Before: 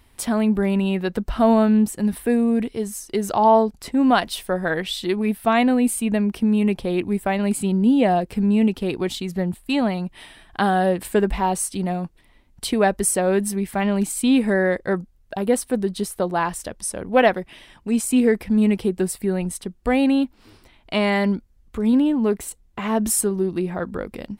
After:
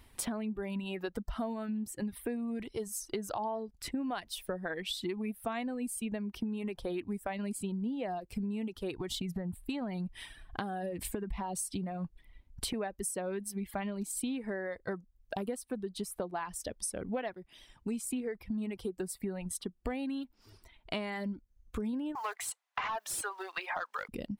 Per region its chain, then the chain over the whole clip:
0:08.95–0:12.74: low-shelf EQ 190 Hz +7 dB + downward compressor, threshold −21 dBFS
0:22.15–0:24.09: one scale factor per block 7 bits + high-pass filter 810 Hz 24 dB per octave + mid-hump overdrive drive 23 dB, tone 1,800 Hz, clips at −8.5 dBFS
whole clip: reverb reduction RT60 1.3 s; downward compressor 12 to 1, threshold −30 dBFS; level −3 dB

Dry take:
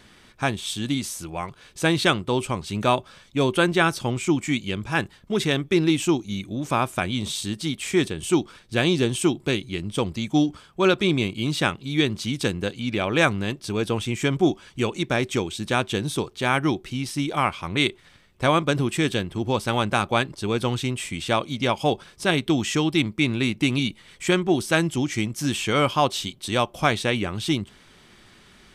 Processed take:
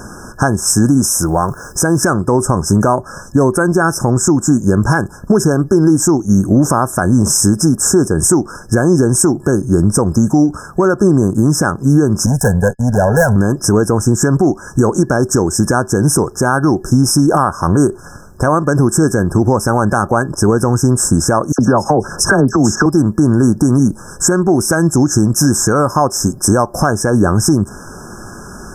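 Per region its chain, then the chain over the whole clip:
0:01.05–0:02.03: downward compressor 2 to 1, threshold −34 dBFS + bit-depth reduction 12 bits, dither triangular
0:12.26–0:13.36: noise gate −36 dBFS, range −58 dB + tube saturation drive 22 dB, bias 0.3 + phaser with its sweep stopped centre 1,200 Hz, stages 6
0:21.52–0:22.86: high-shelf EQ 8,100 Hz −11.5 dB + all-pass dispersion lows, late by 66 ms, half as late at 2,000 Hz + multiband upward and downward compressor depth 100%
whole clip: brick-wall band-stop 1,700–5,100 Hz; downward compressor 6 to 1, threshold −28 dBFS; boost into a limiter +23.5 dB; level −1 dB

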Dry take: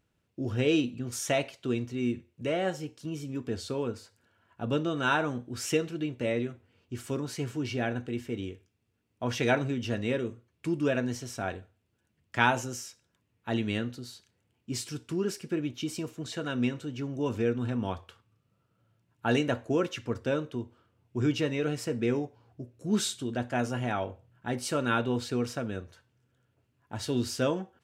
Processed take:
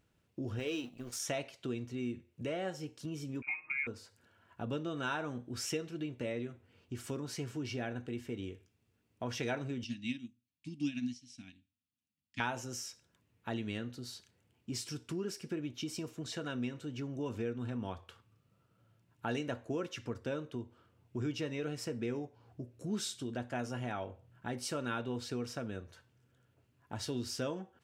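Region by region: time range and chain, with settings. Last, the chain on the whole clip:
0:00.59–0:01.20: mu-law and A-law mismatch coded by A + parametric band 120 Hz −8 dB 2.5 octaves + mains-hum notches 50/100/150 Hz
0:03.42–0:03.87: voice inversion scrambler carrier 2,600 Hz + high-pass filter 51 Hz + comb filter 6.5 ms, depth 91%
0:09.84–0:12.40: drawn EQ curve 110 Hz 0 dB, 280 Hz +11 dB, 420 Hz −27 dB, 920 Hz −15 dB, 1,400 Hz −12 dB, 2,400 Hz +9 dB, 3,600 Hz +12 dB, 5,200 Hz +12 dB, 8,300 Hz +5 dB + bad sample-rate conversion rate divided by 2×, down none, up filtered + expander for the loud parts 2.5 to 1, over −36 dBFS
whole clip: dynamic equaliser 5,400 Hz, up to +5 dB, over −57 dBFS, Q 5.5; downward compressor 2 to 1, threshold −43 dBFS; level +1 dB

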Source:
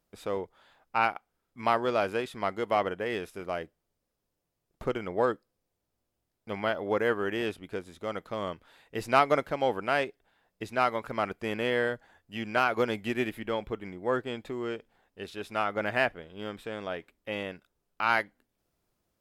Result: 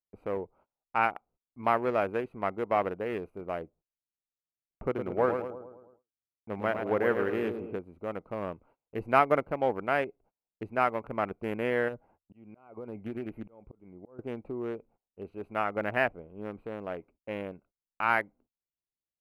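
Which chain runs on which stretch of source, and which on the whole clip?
0:04.87–0:07.78: high-pass filter 53 Hz + repeating echo 108 ms, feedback 54%, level −6 dB
0:11.88–0:14.19: downward compressor 8 to 1, threshold −30 dBFS + volume swells 498 ms
whole clip: adaptive Wiener filter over 25 samples; noise gate −59 dBFS, range −27 dB; flat-topped bell 5,200 Hz −12 dB

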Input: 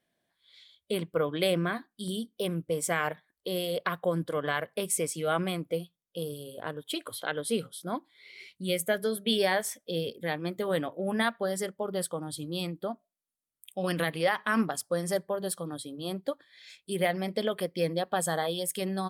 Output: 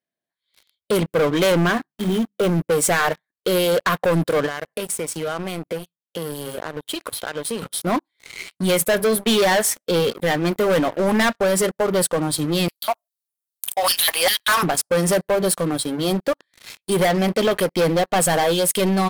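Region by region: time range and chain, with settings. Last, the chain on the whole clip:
0:01.72–0:02.59: running median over 9 samples + parametric band 5,000 Hz −6.5 dB 1.2 octaves + mains-hum notches 50/100/150/200 Hz
0:04.46–0:07.62: high-pass filter 56 Hz + downward compressor 4 to 1, threshold −41 dBFS
0:12.68–0:14.63: RIAA equalisation recording + auto-filter high-pass square 2.5 Hz 810–3,800 Hz
whole clip: low-shelf EQ 67 Hz −11.5 dB; notch filter 3,400 Hz, Q 16; leveller curve on the samples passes 5; level −1.5 dB

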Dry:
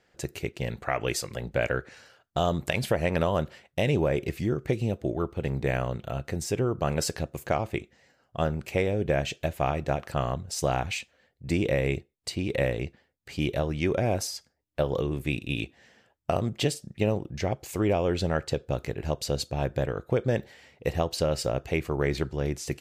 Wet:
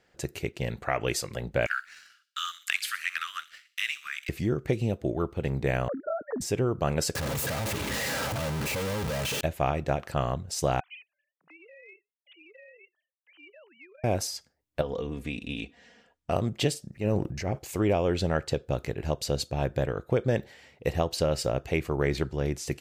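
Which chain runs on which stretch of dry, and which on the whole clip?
0:01.66–0:04.29: Butterworth high-pass 1,200 Hz 96 dB per octave + leveller curve on the samples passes 1 + delay with a high-pass on its return 63 ms, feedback 45%, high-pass 3,100 Hz, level −11.5 dB
0:05.88–0:06.41: three sine waves on the formant tracks + elliptic low-pass filter 1,700 Hz
0:07.15–0:09.41: sign of each sample alone + high-pass filter 42 Hz + notch comb filter 360 Hz
0:10.80–0:14.04: three sine waves on the formant tracks + downward compressor, threshold −28 dBFS + first difference
0:14.81–0:16.31: low-pass filter 8,400 Hz + comb filter 4.2 ms, depth 60% + downward compressor 2 to 1, threshold −33 dBFS
0:16.91–0:17.59: parametric band 3,400 Hz −11.5 dB 0.3 octaves + transient designer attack −8 dB, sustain +8 dB
whole clip: no processing

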